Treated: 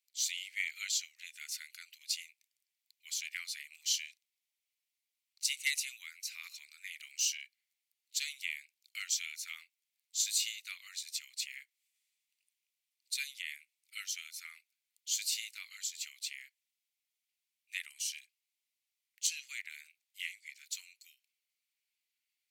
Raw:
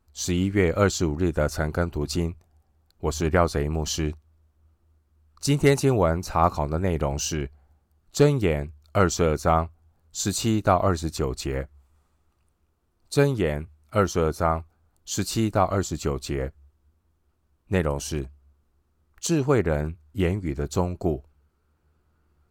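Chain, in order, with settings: Chebyshev high-pass 2100 Hz, order 5; gain -1.5 dB

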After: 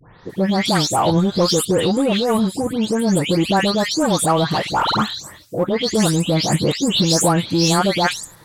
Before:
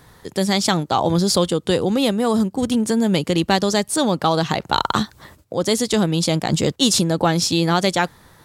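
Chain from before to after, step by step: spectral delay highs late, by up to 0.297 s; in parallel at -7 dB: hard clip -20 dBFS, distortion -8 dB

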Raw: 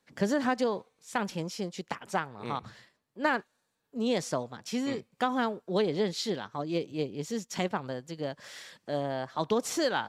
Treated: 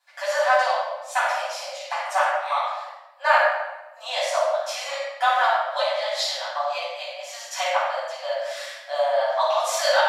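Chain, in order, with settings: transient shaper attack 0 dB, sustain -4 dB; brick-wall FIR high-pass 530 Hz; shoebox room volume 630 m³, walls mixed, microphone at 8.5 m; gain -3 dB

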